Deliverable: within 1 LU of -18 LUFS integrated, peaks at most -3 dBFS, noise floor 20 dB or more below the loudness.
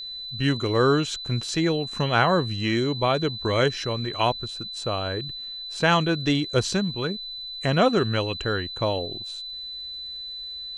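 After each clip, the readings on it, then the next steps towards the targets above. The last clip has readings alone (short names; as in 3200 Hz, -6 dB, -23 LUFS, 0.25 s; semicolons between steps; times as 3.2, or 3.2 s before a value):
ticks 54/s; steady tone 4000 Hz; tone level -33 dBFS; loudness -25.0 LUFS; peak -5.5 dBFS; loudness target -18.0 LUFS
-> de-click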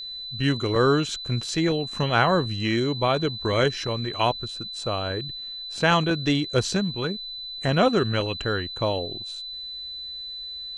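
ticks 0.093/s; steady tone 4000 Hz; tone level -33 dBFS
-> notch 4000 Hz, Q 30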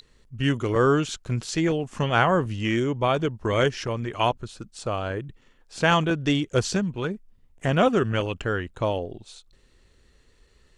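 steady tone none; loudness -25.0 LUFS; peak -6.0 dBFS; loudness target -18.0 LUFS
-> gain +7 dB; limiter -3 dBFS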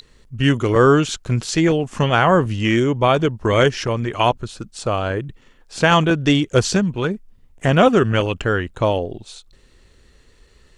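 loudness -18.0 LUFS; peak -3.0 dBFS; noise floor -53 dBFS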